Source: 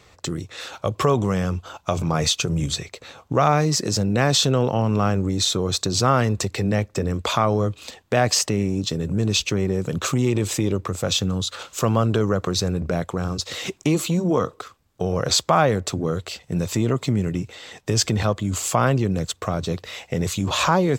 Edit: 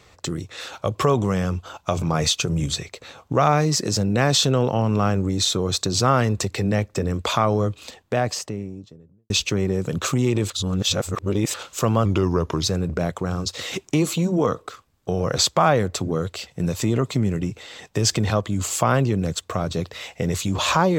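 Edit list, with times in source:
0:07.63–0:09.30: fade out and dull
0:10.50–0:11.54: reverse
0:12.05–0:12.56: play speed 87%

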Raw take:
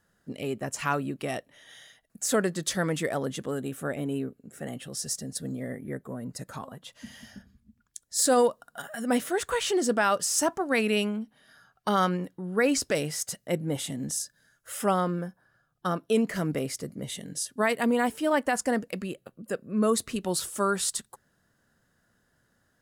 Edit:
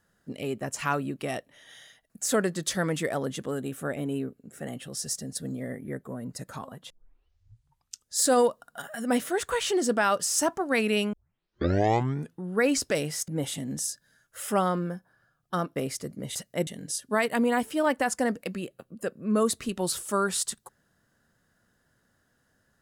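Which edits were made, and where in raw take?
0:06.90: tape start 1.29 s
0:11.13: tape start 1.30 s
0:13.28–0:13.60: move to 0:17.14
0:16.08–0:16.55: remove

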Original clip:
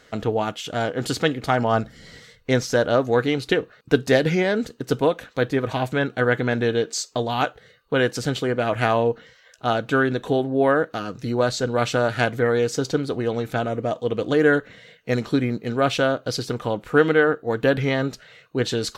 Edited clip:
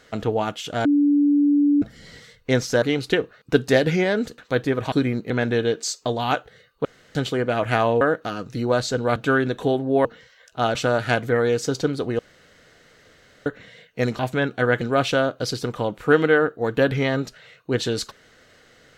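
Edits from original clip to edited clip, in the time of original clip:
0:00.85–0:01.82: beep over 289 Hz −14 dBFS
0:02.82–0:03.21: remove
0:04.77–0:05.24: remove
0:05.78–0:06.40: swap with 0:15.29–0:15.67
0:07.95–0:08.25: fill with room tone
0:09.11–0:09.81: swap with 0:10.70–0:11.85
0:13.29–0:14.56: fill with room tone

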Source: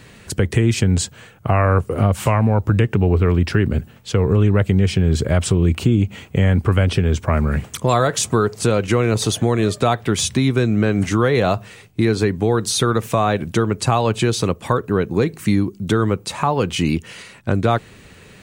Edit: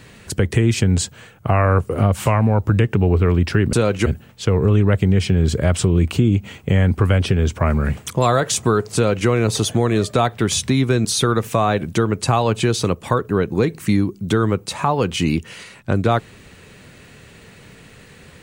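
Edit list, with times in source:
0:08.62–0:08.95: duplicate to 0:03.73
0:10.72–0:12.64: remove

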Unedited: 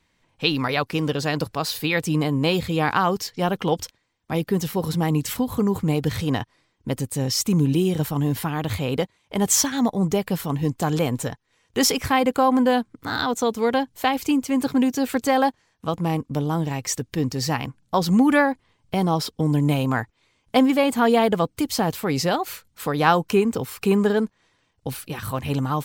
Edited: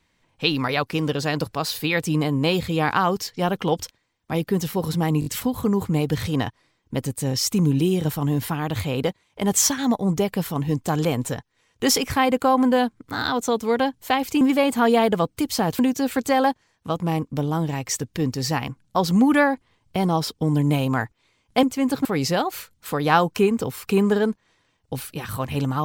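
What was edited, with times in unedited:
0:05.20: stutter 0.02 s, 4 plays
0:14.35–0:14.77: swap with 0:20.61–0:21.99

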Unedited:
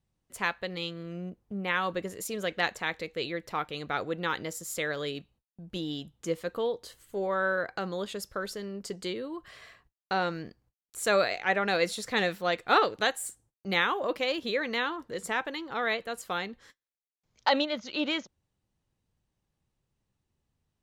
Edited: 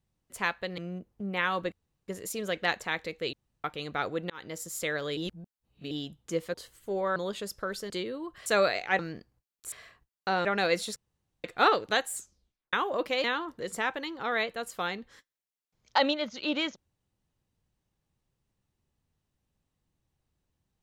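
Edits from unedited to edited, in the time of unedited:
0:00.78–0:01.09: remove
0:02.03: splice in room tone 0.36 s
0:03.28–0:03.59: fill with room tone
0:04.25–0:04.57: fade in
0:05.12–0:05.86: reverse
0:06.49–0:06.80: remove
0:07.42–0:07.89: remove
0:08.63–0:09.00: remove
0:09.56–0:10.29: swap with 0:11.02–0:11.55
0:12.06–0:12.54: fill with room tone
0:13.25: tape stop 0.58 s
0:14.34–0:14.75: remove

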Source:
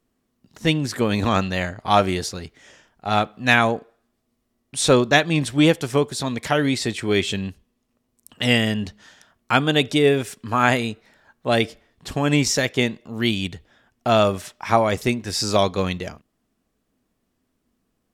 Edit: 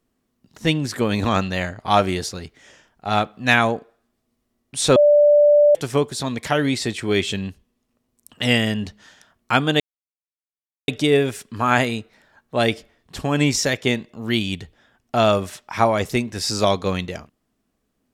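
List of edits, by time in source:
0:04.96–0:05.75: beep over 588 Hz −9.5 dBFS
0:09.80: splice in silence 1.08 s

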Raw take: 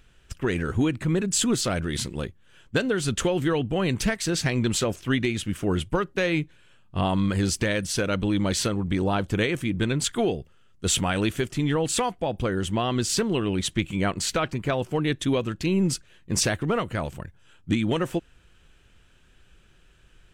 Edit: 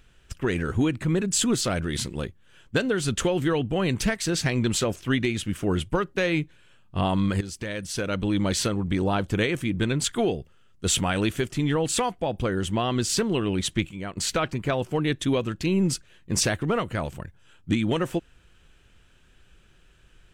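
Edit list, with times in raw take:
0:07.41–0:08.38: fade in linear, from −14 dB
0:13.89–0:14.17: clip gain −9.5 dB

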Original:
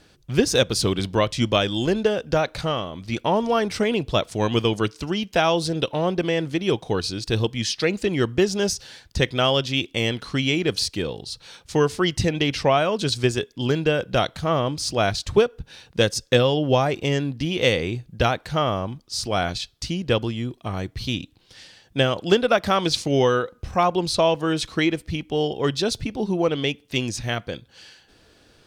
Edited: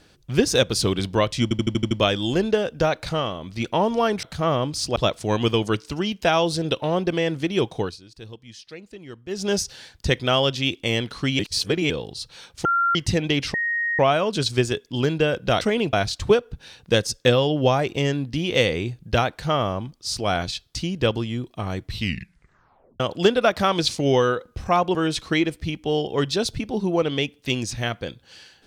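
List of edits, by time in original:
0:01.43: stutter 0.08 s, 7 plays
0:03.75–0:04.07: swap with 0:14.27–0:15.00
0:06.89–0:08.58: duck −18 dB, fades 0.19 s
0:10.50–0:11.01: reverse
0:11.76–0:12.06: beep over 1,380 Hz −17 dBFS
0:12.65: insert tone 1,870 Hz −21 dBFS 0.45 s
0:20.94: tape stop 1.13 s
0:24.02–0:24.41: remove

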